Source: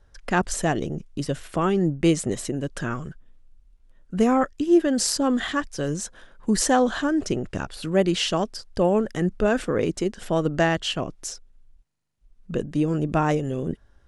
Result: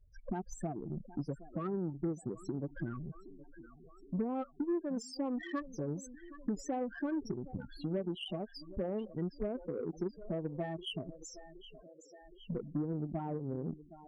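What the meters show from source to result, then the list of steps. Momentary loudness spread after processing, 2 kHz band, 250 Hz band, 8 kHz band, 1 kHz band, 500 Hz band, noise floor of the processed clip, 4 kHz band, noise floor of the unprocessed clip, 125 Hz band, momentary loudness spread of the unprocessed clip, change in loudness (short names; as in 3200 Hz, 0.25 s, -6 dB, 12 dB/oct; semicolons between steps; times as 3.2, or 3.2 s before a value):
16 LU, -21.5 dB, -14.0 dB, -23.5 dB, -18.0 dB, -15.5 dB, -59 dBFS, -17.5 dB, -58 dBFS, -12.5 dB, 11 LU, -15.0 dB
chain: compressor 8:1, threshold -29 dBFS, peak gain reduction 16 dB; thinning echo 0.768 s, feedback 70%, high-pass 220 Hz, level -11.5 dB; loudest bins only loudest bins 8; added harmonics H 2 -33 dB, 7 -27 dB, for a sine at -21 dBFS; gain -3 dB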